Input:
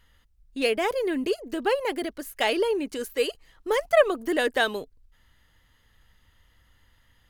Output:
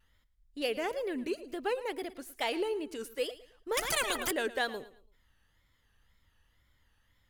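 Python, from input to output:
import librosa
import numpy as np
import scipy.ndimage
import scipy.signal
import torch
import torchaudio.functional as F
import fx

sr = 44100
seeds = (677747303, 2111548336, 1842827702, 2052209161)

y = fx.wow_flutter(x, sr, seeds[0], rate_hz=2.1, depth_cents=130.0)
y = fx.echo_feedback(y, sr, ms=111, feedback_pct=31, wet_db=-16.5)
y = fx.spectral_comp(y, sr, ratio=4.0, at=(3.77, 4.31))
y = y * 10.0 ** (-8.5 / 20.0)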